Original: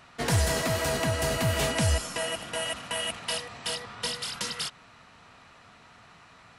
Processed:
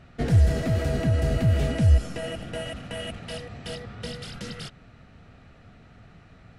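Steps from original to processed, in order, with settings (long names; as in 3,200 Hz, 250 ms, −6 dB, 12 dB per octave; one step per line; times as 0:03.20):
parametric band 1,000 Hz −14 dB 0.38 octaves
brickwall limiter −21.5 dBFS, peak gain reduction 5 dB
spectral tilt −3.5 dB per octave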